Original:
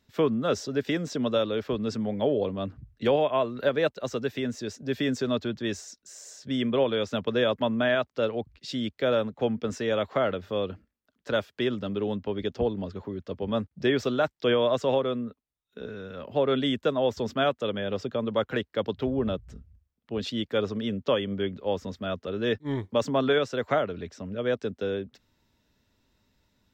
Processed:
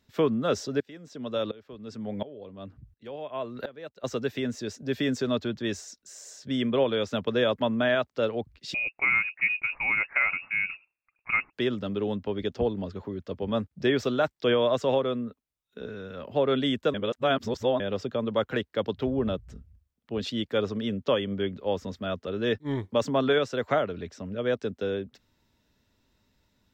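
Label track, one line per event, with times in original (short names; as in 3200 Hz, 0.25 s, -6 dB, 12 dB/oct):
0.800000	4.040000	dB-ramp tremolo swelling 1.4 Hz, depth 22 dB
8.740000	11.530000	inverted band carrier 2700 Hz
16.940000	17.800000	reverse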